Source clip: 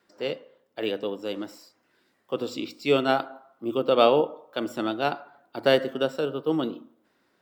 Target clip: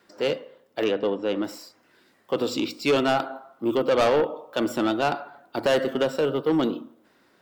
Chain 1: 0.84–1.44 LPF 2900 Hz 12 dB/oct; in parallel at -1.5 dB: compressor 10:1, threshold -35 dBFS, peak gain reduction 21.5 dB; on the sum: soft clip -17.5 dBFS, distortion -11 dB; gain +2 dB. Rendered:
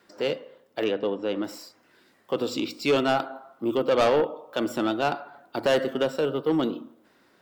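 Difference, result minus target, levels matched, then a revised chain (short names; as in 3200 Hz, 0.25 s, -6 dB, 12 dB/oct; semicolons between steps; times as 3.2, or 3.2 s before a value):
compressor: peak gain reduction +10.5 dB
0.84–1.44 LPF 2900 Hz 12 dB/oct; in parallel at -1.5 dB: compressor 10:1, threshold -23.5 dBFS, peak gain reduction 11 dB; on the sum: soft clip -17.5 dBFS, distortion -10 dB; gain +2 dB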